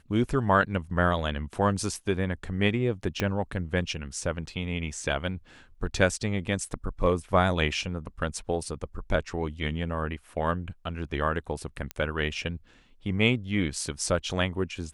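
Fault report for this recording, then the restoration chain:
3.20 s: pop -12 dBFS
11.91 s: pop -17 dBFS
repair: de-click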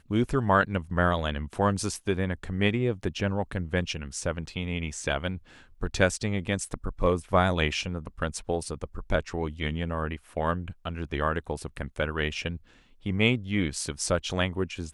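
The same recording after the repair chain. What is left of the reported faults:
3.20 s: pop

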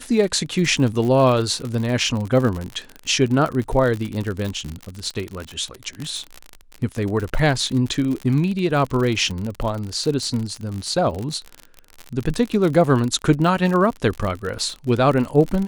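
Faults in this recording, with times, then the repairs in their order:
crackle 56 per s -24 dBFS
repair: de-click

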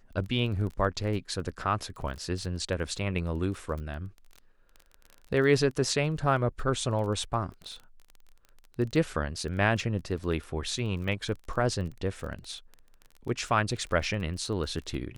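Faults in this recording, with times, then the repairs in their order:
crackle 21 per s -36 dBFS
11.08 s: dropout 2.1 ms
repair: de-click; interpolate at 11.08 s, 2.1 ms

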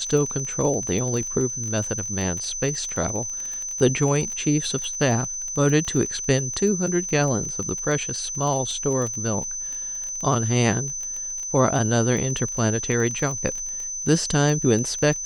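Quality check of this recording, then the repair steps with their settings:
crackle 20 per s -27 dBFS
whine 6.1 kHz -28 dBFS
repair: de-click; band-stop 6.1 kHz, Q 30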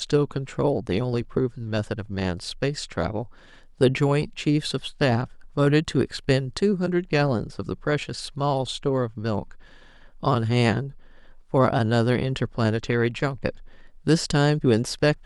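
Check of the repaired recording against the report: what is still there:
nothing left

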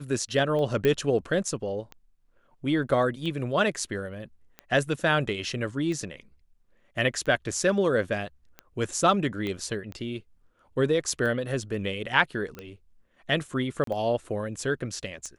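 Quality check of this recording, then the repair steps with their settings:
tick 45 rpm -24 dBFS
0.85 s: pop -13 dBFS
9.47 s: pop -20 dBFS
12.55 s: pop -27 dBFS
13.84–13.87 s: dropout 33 ms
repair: de-click; interpolate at 13.84 s, 33 ms

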